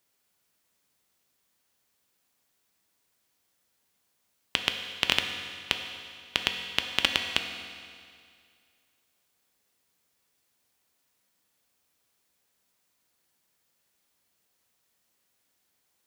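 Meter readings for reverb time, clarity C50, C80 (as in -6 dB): 2.2 s, 5.5 dB, 6.5 dB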